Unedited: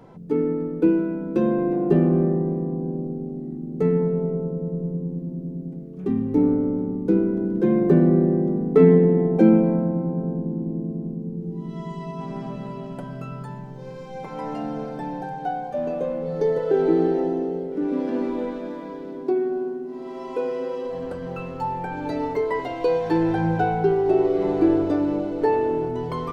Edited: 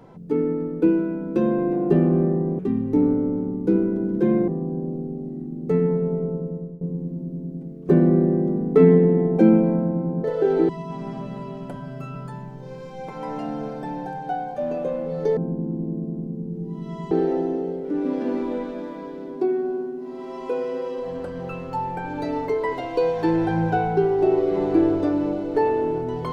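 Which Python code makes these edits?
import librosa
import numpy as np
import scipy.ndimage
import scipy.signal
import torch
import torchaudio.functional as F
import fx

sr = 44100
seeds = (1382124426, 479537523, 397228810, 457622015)

y = fx.edit(x, sr, fx.fade_out_to(start_s=4.39, length_s=0.53, curve='qsin', floor_db=-18.0),
    fx.move(start_s=6.0, length_s=1.89, to_s=2.59),
    fx.swap(start_s=10.24, length_s=1.74, other_s=16.53, other_length_s=0.45),
    fx.stretch_span(start_s=13.05, length_s=0.26, factor=1.5), tone=tone)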